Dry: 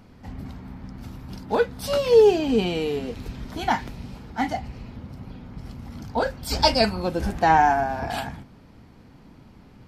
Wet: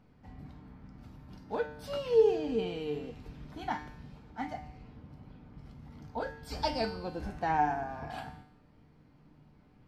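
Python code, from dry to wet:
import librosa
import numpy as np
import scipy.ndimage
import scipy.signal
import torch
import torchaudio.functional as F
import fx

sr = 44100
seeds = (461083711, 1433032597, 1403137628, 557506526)

y = fx.high_shelf(x, sr, hz=4500.0, db=-10.0)
y = fx.comb_fb(y, sr, f0_hz=150.0, decay_s=0.76, harmonics='all', damping=0.0, mix_pct=80)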